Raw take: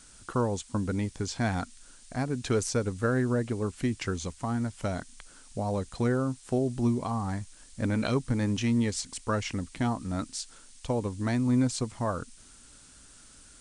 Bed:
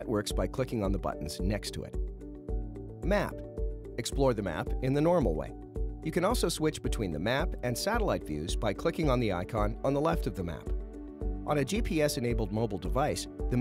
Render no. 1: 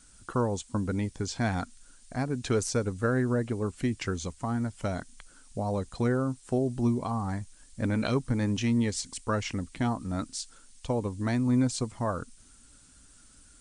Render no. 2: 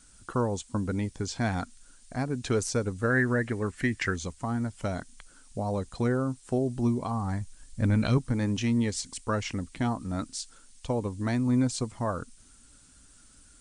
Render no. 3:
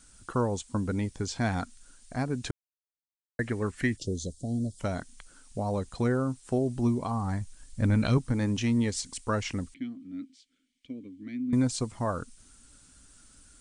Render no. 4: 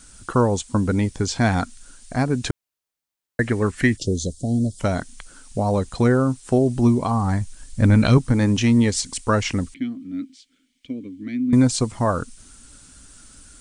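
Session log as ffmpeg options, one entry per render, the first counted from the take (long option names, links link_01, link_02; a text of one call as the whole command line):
ffmpeg -i in.wav -af "afftdn=noise_reduction=6:noise_floor=-54" out.wav
ffmpeg -i in.wav -filter_complex "[0:a]asettb=1/sr,asplit=3[link_01][link_02][link_03];[link_01]atrim=end=3.104[link_04];[link_02]atrim=start=3.1:end=4.16,asetpts=PTS-STARTPTS,afade=type=in:duration=0.004:curve=qsin,afade=type=out:start_time=1.056:duration=0.004:curve=qsin,equalizer=frequency=1800:width_type=o:width=0.55:gain=14.5[link_05];[link_03]atrim=start=4.156[link_06];[link_04][link_05]acrossfade=duration=0.004:curve1=hsin:curve2=qsin[link_07];[link_07][link_06]acrossfade=duration=0.004:curve1=qsin:curve2=hsin,asettb=1/sr,asplit=3[link_08][link_09][link_10];[link_08]atrim=end=7.074[link_11];[link_09]atrim=start=7.07:end=8.18,asetpts=PTS-STARTPTS,afade=type=in:duration=0.004:curve=qsin,afade=type=out:start_time=1.106:duration=0.004:curve=qsin,asubboost=boost=6.5:cutoff=210[link_12];[link_10]atrim=start=8.176[link_13];[link_11][link_12]acrossfade=duration=0.004:curve1=hsin:curve2=qsin[link_14];[link_14][link_13]acrossfade=duration=0.004:curve1=qsin:curve2=hsin" out.wav
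ffmpeg -i in.wav -filter_complex "[0:a]asplit=3[link_01][link_02][link_03];[link_01]afade=type=out:start_time=3.96:duration=0.02[link_04];[link_02]asuperstop=centerf=1500:order=12:qfactor=0.52,afade=type=in:start_time=3.96:duration=0.02,afade=type=out:start_time=4.79:duration=0.02[link_05];[link_03]afade=type=in:start_time=4.79:duration=0.02[link_06];[link_04][link_05][link_06]amix=inputs=3:normalize=0,asettb=1/sr,asplit=3[link_07][link_08][link_09];[link_07]atrim=end=9.744[link_10];[link_08]atrim=start=9.74:end=11.53,asetpts=PTS-STARTPTS,afade=type=in:duration=0.004:curve=qsin,afade=type=out:start_time=1.786:duration=0.004:curve=qsin,asplit=3[link_11][link_12][link_13];[link_11]bandpass=frequency=270:width_type=q:width=8,volume=0dB[link_14];[link_12]bandpass=frequency=2290:width_type=q:width=8,volume=-6dB[link_15];[link_13]bandpass=frequency=3010:width_type=q:width=8,volume=-9dB[link_16];[link_14][link_15][link_16]amix=inputs=3:normalize=0[link_17];[link_09]atrim=start=11.526[link_18];[link_10][link_17]acrossfade=duration=0.004:curve1=hsin:curve2=qsin[link_19];[link_19][link_18]acrossfade=duration=0.004:curve1=qsin:curve2=hsin,asplit=3[link_20][link_21][link_22];[link_20]atrim=end=2.51,asetpts=PTS-STARTPTS,afade=type=out:start_time=2.506:duration=0.004:curve=hsin[link_23];[link_21]atrim=start=2.51:end=3.39,asetpts=PTS-STARTPTS,volume=0[link_24];[link_22]atrim=start=3.39,asetpts=PTS-STARTPTS,afade=type=in:duration=0.004:curve=hsin[link_25];[link_23][link_24][link_25]concat=n=3:v=0:a=1" out.wav
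ffmpeg -i in.wav -af "volume=9.5dB" out.wav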